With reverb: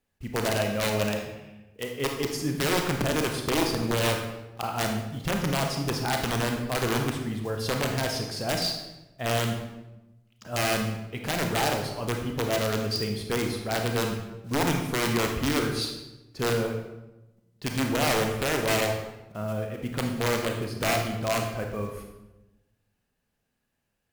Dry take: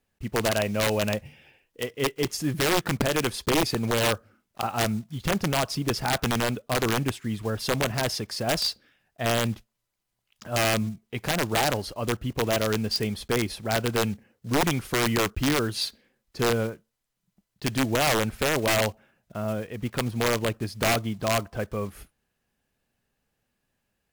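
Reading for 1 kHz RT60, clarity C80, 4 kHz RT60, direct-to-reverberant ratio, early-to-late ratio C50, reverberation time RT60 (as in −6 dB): 0.90 s, 7.5 dB, 0.70 s, 2.5 dB, 5.0 dB, 1.0 s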